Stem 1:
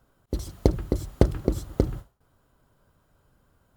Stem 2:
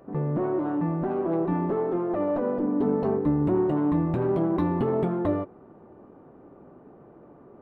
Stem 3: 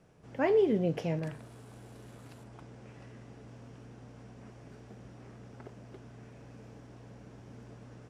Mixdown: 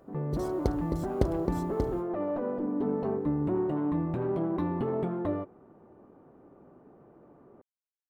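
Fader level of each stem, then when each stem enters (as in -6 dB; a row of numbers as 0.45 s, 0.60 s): -8.0 dB, -5.5 dB, mute; 0.00 s, 0.00 s, mute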